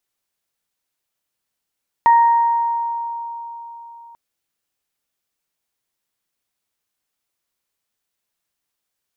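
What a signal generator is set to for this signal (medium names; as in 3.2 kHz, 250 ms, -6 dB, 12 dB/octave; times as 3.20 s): additive tone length 2.09 s, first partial 933 Hz, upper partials -15 dB, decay 3.89 s, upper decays 1.41 s, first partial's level -7.5 dB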